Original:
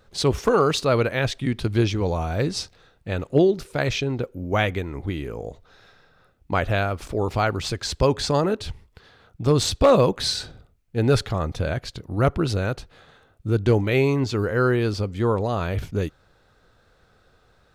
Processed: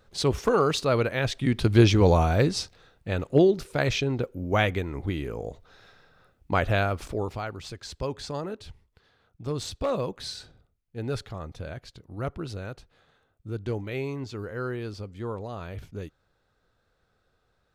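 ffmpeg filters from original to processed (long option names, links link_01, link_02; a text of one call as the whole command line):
ffmpeg -i in.wav -af "volume=5.5dB,afade=type=in:start_time=1.24:duration=0.88:silence=0.354813,afade=type=out:start_time=2.12:duration=0.45:silence=0.446684,afade=type=out:start_time=6.99:duration=0.42:silence=0.298538" out.wav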